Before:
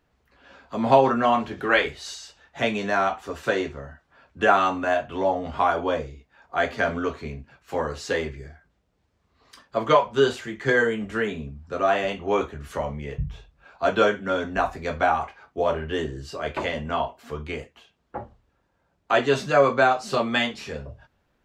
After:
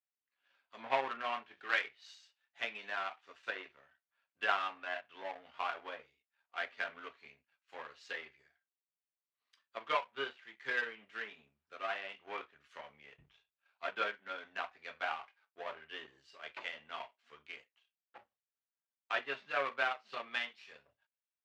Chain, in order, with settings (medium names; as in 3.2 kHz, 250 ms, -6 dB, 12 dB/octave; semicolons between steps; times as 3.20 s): low-pass that closes with the level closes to 2.4 kHz, closed at -20 dBFS; power-law waveshaper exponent 1.4; band-pass filter 2.7 kHz, Q 1.1; trim -2.5 dB